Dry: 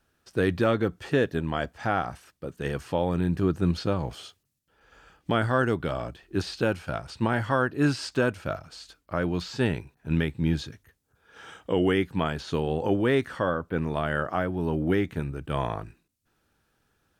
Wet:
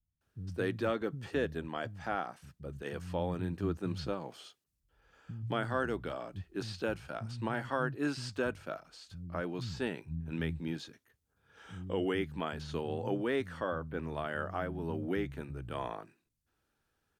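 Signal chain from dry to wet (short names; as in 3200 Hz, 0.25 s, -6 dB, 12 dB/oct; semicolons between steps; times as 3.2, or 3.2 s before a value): bands offset in time lows, highs 0.21 s, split 170 Hz; gain -8.5 dB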